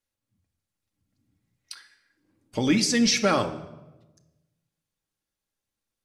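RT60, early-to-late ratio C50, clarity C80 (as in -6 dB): 1.1 s, 12.5 dB, 15.0 dB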